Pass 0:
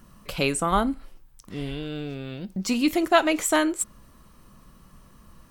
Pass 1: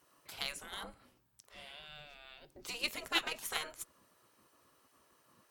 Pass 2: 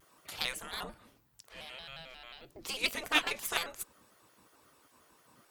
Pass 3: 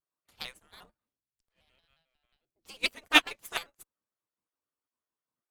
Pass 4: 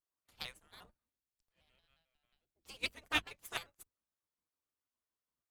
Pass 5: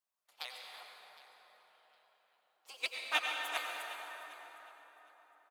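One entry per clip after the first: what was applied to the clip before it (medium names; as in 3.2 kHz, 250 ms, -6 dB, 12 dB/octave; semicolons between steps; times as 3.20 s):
hum notches 50/100/150/200/250 Hz; spectral gate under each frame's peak -15 dB weak; Chebyshev shaper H 7 -23 dB, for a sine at -13.5 dBFS; trim -3 dB
vibrato with a chosen wave square 5.6 Hz, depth 160 cents; trim +4.5 dB
in parallel at -11 dB: Schmitt trigger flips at -39.5 dBFS; on the sum: upward expansion 2.5:1, over -50 dBFS; trim +8.5 dB
octave divider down 2 oct, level -1 dB; compression 2:1, threshold -32 dBFS, peak gain reduction 10.5 dB; trim -4 dB
resonant high-pass 680 Hz, resonance Q 1.5; feedback delay 761 ms, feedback 18%, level -19 dB; reverberation RT60 4.4 s, pre-delay 78 ms, DRR 0 dB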